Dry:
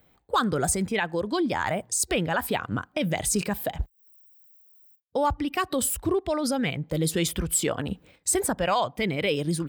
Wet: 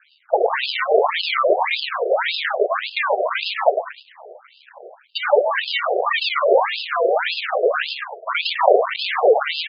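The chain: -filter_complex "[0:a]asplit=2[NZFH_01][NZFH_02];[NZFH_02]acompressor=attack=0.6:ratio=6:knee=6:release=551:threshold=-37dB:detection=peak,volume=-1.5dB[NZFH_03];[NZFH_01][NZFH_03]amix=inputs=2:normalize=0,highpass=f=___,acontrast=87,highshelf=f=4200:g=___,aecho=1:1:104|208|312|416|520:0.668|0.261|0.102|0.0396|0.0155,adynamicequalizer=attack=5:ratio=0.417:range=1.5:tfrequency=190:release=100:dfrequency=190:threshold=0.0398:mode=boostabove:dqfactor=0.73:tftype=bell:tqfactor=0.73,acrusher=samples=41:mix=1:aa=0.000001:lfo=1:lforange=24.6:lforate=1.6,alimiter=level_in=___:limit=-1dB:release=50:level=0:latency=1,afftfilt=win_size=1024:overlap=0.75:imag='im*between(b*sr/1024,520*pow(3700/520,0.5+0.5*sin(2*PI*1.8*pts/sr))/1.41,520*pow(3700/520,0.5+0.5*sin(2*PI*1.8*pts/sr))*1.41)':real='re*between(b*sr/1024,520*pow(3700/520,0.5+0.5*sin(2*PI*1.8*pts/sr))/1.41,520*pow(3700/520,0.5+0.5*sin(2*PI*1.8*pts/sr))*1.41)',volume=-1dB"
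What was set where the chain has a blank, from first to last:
85, -2.5, 10.5dB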